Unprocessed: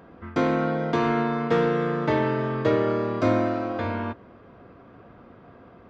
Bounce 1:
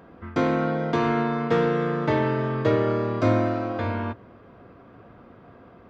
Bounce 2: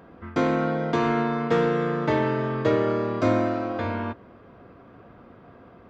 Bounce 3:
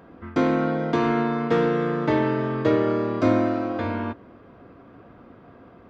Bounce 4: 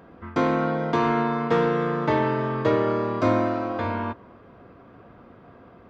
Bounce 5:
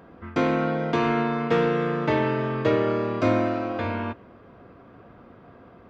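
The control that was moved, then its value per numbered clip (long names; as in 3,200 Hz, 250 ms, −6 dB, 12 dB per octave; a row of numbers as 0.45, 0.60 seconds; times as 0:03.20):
dynamic equaliser, frequency: 110, 7,200, 290, 1,000, 2,600 Hertz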